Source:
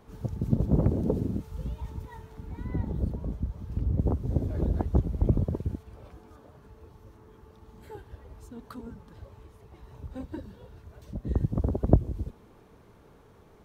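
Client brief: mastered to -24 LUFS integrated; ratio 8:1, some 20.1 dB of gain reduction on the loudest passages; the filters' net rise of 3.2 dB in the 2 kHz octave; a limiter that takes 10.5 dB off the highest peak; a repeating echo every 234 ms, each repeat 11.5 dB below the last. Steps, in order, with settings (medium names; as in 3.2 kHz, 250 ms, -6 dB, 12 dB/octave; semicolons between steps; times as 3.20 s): peaking EQ 2 kHz +4 dB; compression 8:1, threshold -35 dBFS; peak limiter -32.5 dBFS; feedback delay 234 ms, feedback 27%, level -11.5 dB; trim +21 dB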